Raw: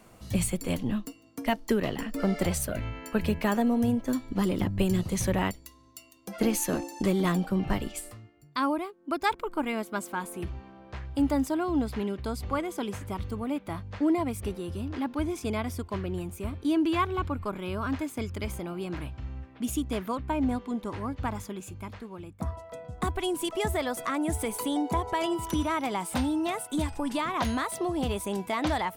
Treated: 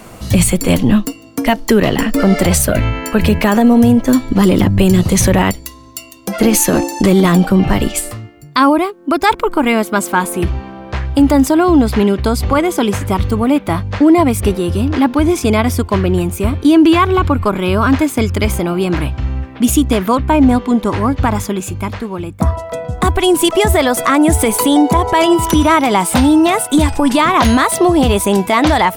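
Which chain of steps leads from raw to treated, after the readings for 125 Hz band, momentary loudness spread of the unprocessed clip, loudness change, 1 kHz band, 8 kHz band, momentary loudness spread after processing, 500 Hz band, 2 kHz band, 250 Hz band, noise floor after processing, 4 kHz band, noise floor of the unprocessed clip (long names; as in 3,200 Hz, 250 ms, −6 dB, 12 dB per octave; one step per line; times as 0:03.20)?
+17.5 dB, 11 LU, +17.0 dB, +17.0 dB, +18.0 dB, 9 LU, +17.0 dB, +17.0 dB, +17.0 dB, −35 dBFS, +17.5 dB, −54 dBFS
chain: boost into a limiter +20 dB
level −1 dB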